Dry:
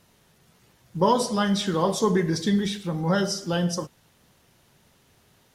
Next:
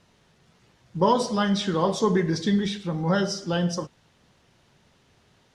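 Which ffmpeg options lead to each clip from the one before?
-af "lowpass=6.1k"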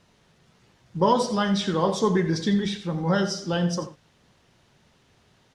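-af "aecho=1:1:86:0.224"

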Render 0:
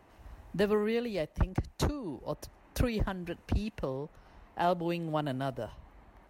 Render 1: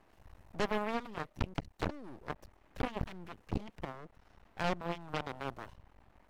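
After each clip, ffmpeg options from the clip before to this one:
-filter_complex "[0:a]acrossover=split=3100[a][b];[b]acompressor=threshold=-57dB:ratio=4:attack=1:release=60[c];[a][c]amix=inputs=2:normalize=0,aeval=exprs='max(val(0),0)':c=same,aeval=exprs='0.133*(cos(1*acos(clip(val(0)/0.133,-1,1)))-cos(1*PI/2))+0.00944*(cos(5*acos(clip(val(0)/0.133,-1,1)))-cos(5*PI/2))+0.0473*(cos(7*acos(clip(val(0)/0.133,-1,1)))-cos(7*PI/2))':c=same,volume=-3.5dB"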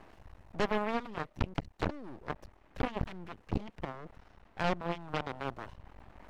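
-af "highshelf=f=8.1k:g=-10.5,areverse,acompressor=mode=upward:threshold=-45dB:ratio=2.5,areverse,volume=2.5dB"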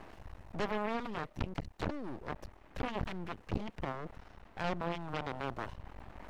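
-af "alimiter=level_in=3.5dB:limit=-24dB:level=0:latency=1:release=14,volume=-3.5dB,volume=4dB"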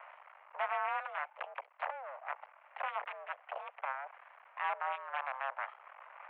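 -af "highpass=f=370:t=q:w=0.5412,highpass=f=370:t=q:w=1.307,lowpass=f=2.4k:t=q:w=0.5176,lowpass=f=2.4k:t=q:w=0.7071,lowpass=f=2.4k:t=q:w=1.932,afreqshift=270,volume=2dB"

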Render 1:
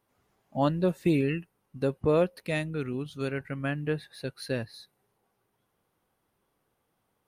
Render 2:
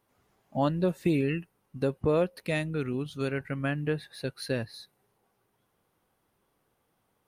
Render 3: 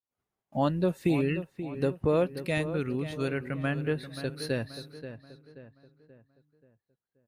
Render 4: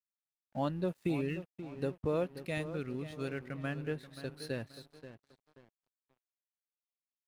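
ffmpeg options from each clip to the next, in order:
-af "acompressor=threshold=-29dB:ratio=1.5,volume=2dB"
-filter_complex "[0:a]agate=range=-33dB:threshold=-57dB:ratio=3:detection=peak,asplit=2[a][b];[b]adelay=531,lowpass=f=2.5k:p=1,volume=-11dB,asplit=2[c][d];[d]adelay=531,lowpass=f=2.5k:p=1,volume=0.44,asplit=2[e][f];[f]adelay=531,lowpass=f=2.5k:p=1,volume=0.44,asplit=2[g][h];[h]adelay=531,lowpass=f=2.5k:p=1,volume=0.44,asplit=2[i][j];[j]adelay=531,lowpass=f=2.5k:p=1,volume=0.44[k];[a][c][e][g][i][k]amix=inputs=6:normalize=0"
-af "aeval=exprs='sgn(val(0))*max(abs(val(0))-0.00335,0)':c=same,volume=-7dB"

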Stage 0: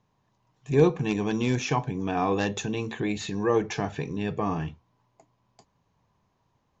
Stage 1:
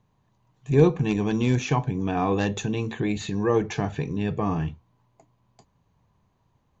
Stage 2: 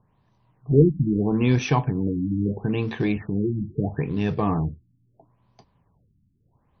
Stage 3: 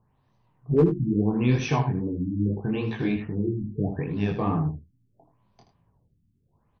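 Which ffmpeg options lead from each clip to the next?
-af "lowshelf=f=190:g=7.5,bandreject=f=5.3k:w=9.7"
-filter_complex "[0:a]asplit=2[a][b];[b]acrusher=bits=3:mode=log:mix=0:aa=0.000001,volume=-9.5dB[c];[a][c]amix=inputs=2:normalize=0,afftfilt=real='re*lt(b*sr/1024,300*pow(6300/300,0.5+0.5*sin(2*PI*0.76*pts/sr)))':imag='im*lt(b*sr/1024,300*pow(6300/300,0.5+0.5*sin(2*PI*0.76*pts/sr)))':win_size=1024:overlap=0.75"
-af "volume=8.5dB,asoftclip=hard,volume=-8.5dB,flanger=delay=18:depth=5.8:speed=2.4,aecho=1:1:78:0.355"

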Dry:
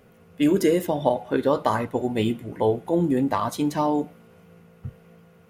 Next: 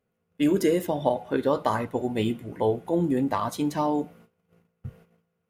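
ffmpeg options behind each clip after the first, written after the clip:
-af "agate=range=-21dB:threshold=-48dB:ratio=16:detection=peak,volume=-2.5dB"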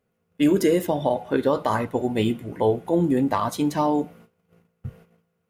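-af "alimiter=level_in=12dB:limit=-1dB:release=50:level=0:latency=1,volume=-8.5dB"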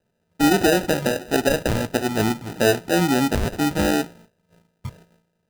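-af "acrusher=samples=40:mix=1:aa=0.000001,volume=1.5dB"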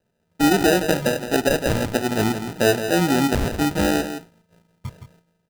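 -af "aecho=1:1:166:0.335"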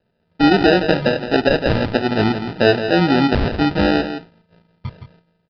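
-af "aresample=11025,aresample=44100,volume=4dB"

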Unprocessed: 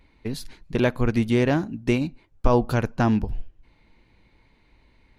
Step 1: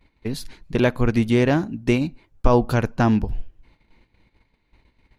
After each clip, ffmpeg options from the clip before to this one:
-af "agate=range=-11dB:threshold=-56dB:ratio=16:detection=peak,volume=2.5dB"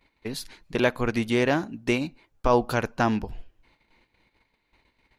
-af "lowshelf=f=270:g=-12"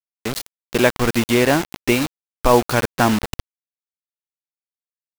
-af "acrusher=bits=4:mix=0:aa=0.000001,volume=6.5dB"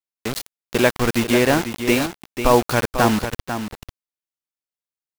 -af "aecho=1:1:494:0.355,volume=-1dB"

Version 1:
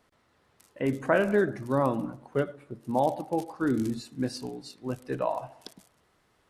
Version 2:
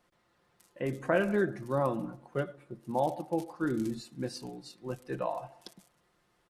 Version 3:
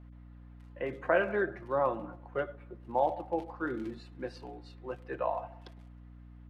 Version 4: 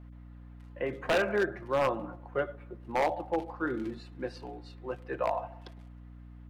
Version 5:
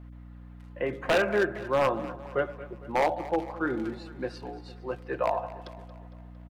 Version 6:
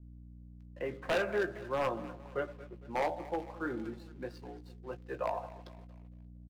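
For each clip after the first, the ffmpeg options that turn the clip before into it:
-af "aecho=1:1:5.7:0.48,volume=-4.5dB"
-filter_complex "[0:a]acrossover=split=390 3200:gain=0.178 1 0.0631[a][b][c];[a][b][c]amix=inputs=3:normalize=0,aeval=exprs='val(0)+0.00251*(sin(2*PI*60*n/s)+sin(2*PI*2*60*n/s)/2+sin(2*PI*3*60*n/s)/3+sin(2*PI*4*60*n/s)/4+sin(2*PI*5*60*n/s)/5)':c=same,volume=2.5dB"
-af "aeval=exprs='0.0794*(abs(mod(val(0)/0.0794+3,4)-2)-1)':c=same,volume=2.5dB"
-af "aecho=1:1:228|456|684|912|1140:0.15|0.0808|0.0436|0.0236|0.0127,volume=3dB"
-filter_complex "[0:a]acrossover=split=450[a][b];[b]aeval=exprs='sgn(val(0))*max(abs(val(0))-0.002,0)':c=same[c];[a][c]amix=inputs=2:normalize=0,asplit=2[d][e];[e]adelay=17,volume=-11dB[f];[d][f]amix=inputs=2:normalize=0,volume=-7.5dB"

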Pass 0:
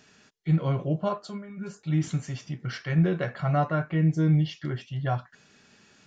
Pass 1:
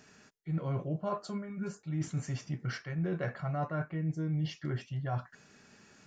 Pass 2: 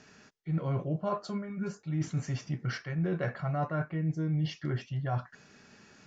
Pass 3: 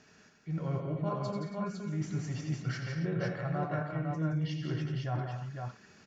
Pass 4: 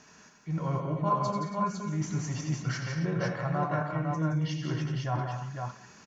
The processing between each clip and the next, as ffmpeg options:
-af "equalizer=f=3.4k:t=o:w=0.79:g=-7,areverse,acompressor=threshold=-31dB:ratio=6,areverse"
-af "lowpass=f=6.7k:w=0.5412,lowpass=f=6.7k:w=1.3066,volume=2.5dB"
-af "aecho=1:1:86|97|172|221|277|505:0.335|0.299|0.473|0.237|0.237|0.631,volume=-4dB"
-af "equalizer=f=100:t=o:w=0.33:g=-6,equalizer=f=400:t=o:w=0.33:g=-3,equalizer=f=1k:t=o:w=0.33:g=10,equalizer=f=6.3k:t=o:w=0.33:g=8,aecho=1:1:187:0.0841,volume=3.5dB"

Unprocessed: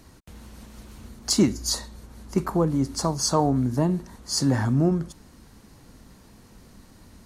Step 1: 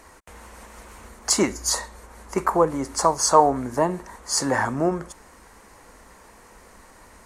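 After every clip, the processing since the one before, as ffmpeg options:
-af "equalizer=f=125:t=o:w=1:g=-10,equalizer=f=250:t=o:w=1:g=-4,equalizer=f=500:t=o:w=1:g=7,equalizer=f=1k:t=o:w=1:g=9,equalizer=f=2k:t=o:w=1:g=9,equalizer=f=4k:t=o:w=1:g=-4,equalizer=f=8k:t=o:w=1:g=8,volume=-1dB"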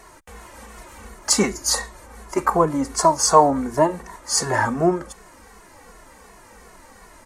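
-filter_complex "[0:a]asplit=2[a][b];[b]adelay=2.3,afreqshift=-2.7[c];[a][c]amix=inputs=2:normalize=1,volume=5.5dB"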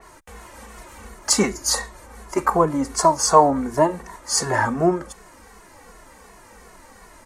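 -af "adynamicequalizer=threshold=0.0224:dfrequency=3400:dqfactor=0.7:tfrequency=3400:tqfactor=0.7:attack=5:release=100:ratio=0.375:range=2:mode=cutabove:tftype=highshelf"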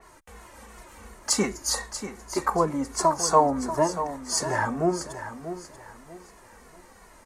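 -af "aecho=1:1:637|1274|1911:0.282|0.0817|0.0237,volume=-5.5dB"

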